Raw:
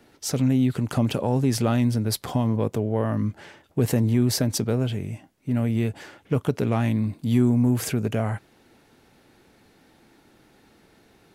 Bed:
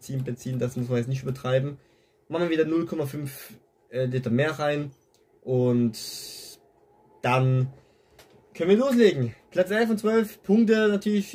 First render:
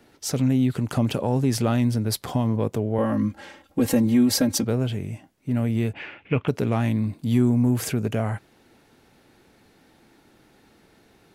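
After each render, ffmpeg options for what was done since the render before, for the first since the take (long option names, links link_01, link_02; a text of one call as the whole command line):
ffmpeg -i in.wav -filter_complex "[0:a]asettb=1/sr,asplit=3[link_01][link_02][link_03];[link_01]atrim=end=2.984[link_04];[link_02]atrim=start=2.98:end=4.65,asetpts=PTS-STARTPTS,afade=type=in:duration=0.004:curve=qsin,afade=type=out:start_time=1.666:duration=0.004:curve=qsin,aecho=1:1:3.7:0.91,atrim=end_sample=73647[link_05];[link_03]atrim=start=4.646[link_06];[link_04][link_05]acrossfade=duration=0.004:curve1=hsin:curve2=qsin[link_07];[link_07][link_06]acrossfade=duration=0.004:curve1=qsin:curve2=hsin,asettb=1/sr,asplit=3[link_08][link_09][link_10];[link_08]atrim=end=5.934[link_11];[link_09]atrim=start=5.93:end=6.48,asetpts=PTS-STARTPTS,afade=type=in:duration=0.004:curve=qsin,afade=type=out:start_time=0.546:duration=0.004:curve=qsin,lowpass=frequency=2500:width_type=q:width=5.4[link_12];[link_10]atrim=start=6.476[link_13];[link_11][link_12]acrossfade=duration=0.004:curve1=hsin:curve2=qsin[link_14];[link_14][link_13]acrossfade=duration=0.004:curve1=qsin:curve2=hsin" out.wav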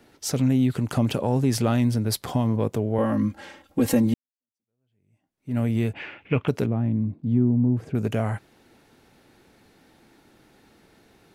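ffmpeg -i in.wav -filter_complex "[0:a]asettb=1/sr,asplit=3[link_01][link_02][link_03];[link_01]atrim=end=6.664[link_04];[link_02]atrim=start=6.66:end=7.95,asetpts=PTS-STARTPTS,afade=type=in:duration=0.004:curve=qsin,afade=type=out:start_time=1.286:duration=0.004:curve=qsin,bandpass=frequency=160:width_type=q:width=0.57[link_05];[link_03]atrim=start=7.946[link_06];[link_04][link_05]acrossfade=duration=0.004:curve1=hsin:curve2=qsin[link_07];[link_07][link_06]acrossfade=duration=0.004:curve1=qsin:curve2=hsin,asplit=2[link_08][link_09];[link_08]atrim=end=4.14,asetpts=PTS-STARTPTS,afade=type=out:start_time=4.136:duration=0.004:curve=hsin[link_10];[link_09]atrim=start=4.14,asetpts=PTS-STARTPTS,afade=type=in:duration=1.44:curve=exp[link_11];[link_10][link_11]concat=n=2:v=0:a=1" out.wav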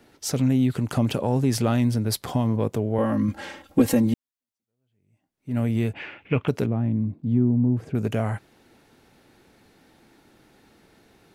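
ffmpeg -i in.wav -filter_complex "[0:a]asettb=1/sr,asplit=3[link_01][link_02][link_03];[link_01]atrim=end=3.284[link_04];[link_02]atrim=start=3.28:end=3.82,asetpts=PTS-STARTPTS,afade=type=in:duration=0.004:curve=qsin,afade=type=out:start_time=0.536:duration=0.004:curve=qsin,acontrast=37[link_05];[link_03]atrim=start=3.816[link_06];[link_04][link_05]acrossfade=duration=0.004:curve1=hsin:curve2=qsin[link_07];[link_07][link_06]acrossfade=duration=0.004:curve1=qsin:curve2=hsin" out.wav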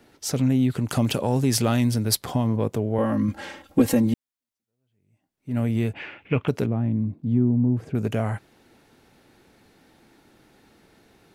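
ffmpeg -i in.wav -filter_complex "[0:a]asettb=1/sr,asplit=3[link_01][link_02][link_03];[link_01]atrim=end=0.884[link_04];[link_02]atrim=start=0.88:end=2.15,asetpts=PTS-STARTPTS,afade=type=in:duration=0.004:curve=qsin,afade=type=out:start_time=1.266:duration=0.004:curve=qsin,highshelf=frequency=2600:gain=7[link_05];[link_03]atrim=start=2.146[link_06];[link_04][link_05]acrossfade=duration=0.004:curve1=hsin:curve2=qsin[link_07];[link_07][link_06]acrossfade=duration=0.004:curve1=qsin:curve2=hsin" out.wav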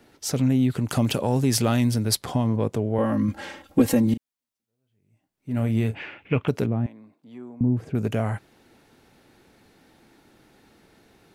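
ffmpeg -i in.wav -filter_complex "[0:a]asettb=1/sr,asplit=3[link_01][link_02][link_03];[link_01]atrim=end=2.064[link_04];[link_02]atrim=start=2.06:end=3.04,asetpts=PTS-STARTPTS,afade=type=in:duration=0.004:curve=qsin,afade=type=out:start_time=0.976:duration=0.004:curve=qsin,equalizer=frequency=14000:width_type=o:width=0.22:gain=-13.5[link_05];[link_03]atrim=start=3.036[link_06];[link_04][link_05]acrossfade=duration=0.004:curve1=hsin:curve2=qsin[link_07];[link_07][link_06]acrossfade=duration=0.004:curve1=qsin:curve2=hsin,asettb=1/sr,asplit=3[link_08][link_09][link_10];[link_08]atrim=end=4.044[link_11];[link_09]atrim=start=4.04:end=6.02,asetpts=PTS-STARTPTS,afade=type=in:duration=0.004:curve=qsin,afade=type=out:start_time=1.976:duration=0.004:curve=qsin,asplit=2[link_12][link_13];[link_13]adelay=36,volume=-12dB[link_14];[link_12][link_14]amix=inputs=2:normalize=0,atrim=end_sample=87318[link_15];[link_10]atrim=start=6.016[link_16];[link_11][link_15]acrossfade=duration=0.004:curve1=hsin:curve2=qsin[link_17];[link_17][link_16]acrossfade=duration=0.004:curve1=qsin:curve2=hsin,asettb=1/sr,asplit=3[link_18][link_19][link_20];[link_18]atrim=end=6.864[link_21];[link_19]atrim=start=6.86:end=7.61,asetpts=PTS-STARTPTS,afade=type=in:duration=0.004:curve=qsin,afade=type=out:start_time=0.746:duration=0.004:curve=qsin,highpass=770[link_22];[link_20]atrim=start=7.606[link_23];[link_21][link_22]acrossfade=duration=0.004:curve1=hsin:curve2=qsin[link_24];[link_24][link_23]acrossfade=duration=0.004:curve1=qsin:curve2=hsin" out.wav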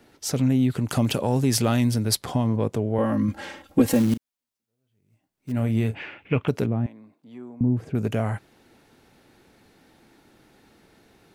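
ffmpeg -i in.wav -filter_complex "[0:a]asettb=1/sr,asplit=3[link_01][link_02][link_03];[link_01]atrim=end=3.894[link_04];[link_02]atrim=start=3.89:end=5.52,asetpts=PTS-STARTPTS,afade=type=in:duration=0.004:curve=qsin,afade=type=out:start_time=1.626:duration=0.004:curve=qsin,acrusher=bits=5:mode=log:mix=0:aa=0.000001[link_05];[link_03]atrim=start=5.516[link_06];[link_04][link_05]acrossfade=duration=0.004:curve1=hsin:curve2=qsin[link_07];[link_07][link_06]acrossfade=duration=0.004:curve1=qsin:curve2=hsin" out.wav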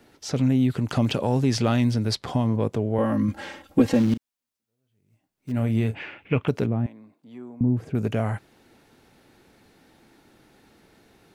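ffmpeg -i in.wav -filter_complex "[0:a]acrossover=split=6000[link_01][link_02];[link_02]acompressor=threshold=-54dB:ratio=4:attack=1:release=60[link_03];[link_01][link_03]amix=inputs=2:normalize=0" out.wav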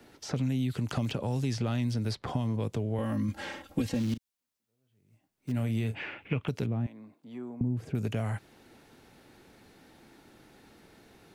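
ffmpeg -i in.wav -filter_complex "[0:a]acrossover=split=160|2400[link_01][link_02][link_03];[link_01]acompressor=threshold=-32dB:ratio=4[link_04];[link_02]acompressor=threshold=-34dB:ratio=4[link_05];[link_03]acompressor=threshold=-43dB:ratio=4[link_06];[link_04][link_05][link_06]amix=inputs=3:normalize=0" out.wav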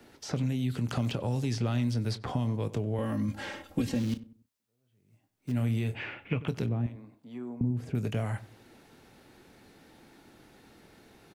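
ffmpeg -i in.wav -filter_complex "[0:a]asplit=2[link_01][link_02];[link_02]adelay=25,volume=-13.5dB[link_03];[link_01][link_03]amix=inputs=2:normalize=0,asplit=2[link_04][link_05];[link_05]adelay=94,lowpass=frequency=1200:poles=1,volume=-15.5dB,asplit=2[link_06][link_07];[link_07]adelay=94,lowpass=frequency=1200:poles=1,volume=0.36,asplit=2[link_08][link_09];[link_09]adelay=94,lowpass=frequency=1200:poles=1,volume=0.36[link_10];[link_04][link_06][link_08][link_10]amix=inputs=4:normalize=0" out.wav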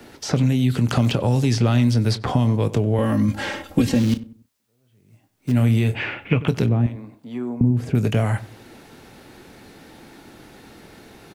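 ffmpeg -i in.wav -af "volume=11.5dB" out.wav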